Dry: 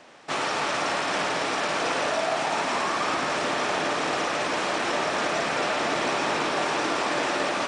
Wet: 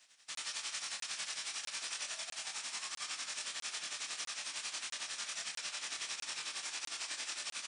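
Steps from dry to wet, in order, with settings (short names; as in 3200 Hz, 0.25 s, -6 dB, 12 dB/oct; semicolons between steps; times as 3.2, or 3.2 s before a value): passive tone stack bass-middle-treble 5-5-5; tremolo triangle 11 Hz, depth 100%; pre-emphasis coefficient 0.9; doubler 25 ms -2.5 dB; crackling interface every 0.65 s, samples 1024, zero, from 0.35; gain +7 dB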